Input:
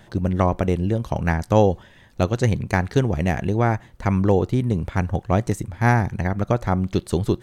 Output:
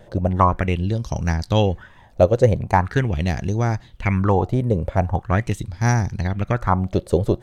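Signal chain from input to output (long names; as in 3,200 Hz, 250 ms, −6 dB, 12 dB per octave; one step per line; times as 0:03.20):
low-shelf EQ 120 Hz +10.5 dB
auto-filter bell 0.42 Hz 520–5,800 Hz +17 dB
level −4.5 dB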